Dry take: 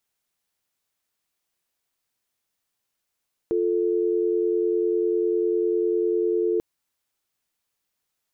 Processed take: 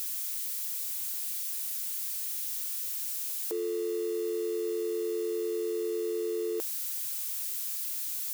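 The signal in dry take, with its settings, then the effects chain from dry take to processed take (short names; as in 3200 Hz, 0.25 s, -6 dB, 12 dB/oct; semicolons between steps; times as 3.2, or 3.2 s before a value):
call progress tone dial tone, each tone -22.5 dBFS 3.09 s
switching spikes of -31 dBFS; HPF 650 Hz 12 dB/oct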